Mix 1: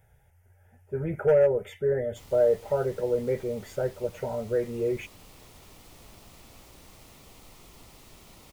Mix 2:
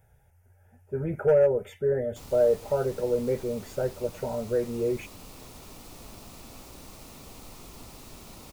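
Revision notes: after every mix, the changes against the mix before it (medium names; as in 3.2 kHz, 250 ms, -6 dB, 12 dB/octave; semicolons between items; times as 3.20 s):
background +5.5 dB; master: add graphic EQ with 31 bands 250 Hz +4 dB, 2 kHz -5 dB, 3.15 kHz -4 dB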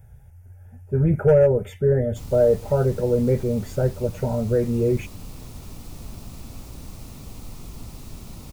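speech +3.5 dB; master: add tone controls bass +12 dB, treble +2 dB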